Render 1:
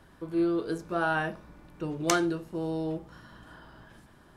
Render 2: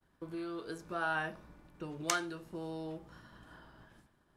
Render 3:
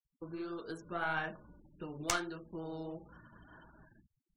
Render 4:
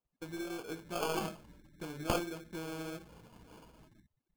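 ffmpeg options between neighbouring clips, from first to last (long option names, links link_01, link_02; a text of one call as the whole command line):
ffmpeg -i in.wav -filter_complex "[0:a]agate=range=-33dB:threshold=-48dB:ratio=3:detection=peak,acrossover=split=800|2300[link_01][link_02][link_03];[link_01]acompressor=threshold=-36dB:ratio=6[link_04];[link_04][link_02][link_03]amix=inputs=3:normalize=0,volume=-4.5dB" out.wav
ffmpeg -i in.wav -af "aeval=exprs='0.422*(cos(1*acos(clip(val(0)/0.422,-1,1)))-cos(1*PI/2))+0.0335*(cos(8*acos(clip(val(0)/0.422,-1,1)))-cos(8*PI/2))':channel_layout=same,flanger=delay=3.3:depth=9:regen=-50:speed=1.6:shape=triangular,afftfilt=real='re*gte(hypot(re,im),0.00141)':imag='im*gte(hypot(re,im),0.00141)':win_size=1024:overlap=0.75,volume=3dB" out.wav
ffmpeg -i in.wav -af "acrusher=samples=23:mix=1:aa=0.000001,volume=1dB" out.wav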